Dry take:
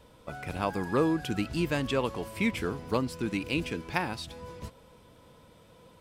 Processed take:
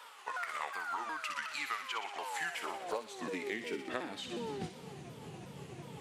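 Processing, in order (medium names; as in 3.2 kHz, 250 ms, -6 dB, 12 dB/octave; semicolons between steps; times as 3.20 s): sawtooth pitch modulation -6.5 st, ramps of 364 ms; high-pass sweep 1.2 kHz -> 140 Hz, 1.89–5.11 s; compression 6:1, threshold -44 dBFS, peak gain reduction 20.5 dB; on a send: feedback echo behind a high-pass 61 ms, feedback 70%, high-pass 2.1 kHz, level -6 dB; on the sum: trim +7.5 dB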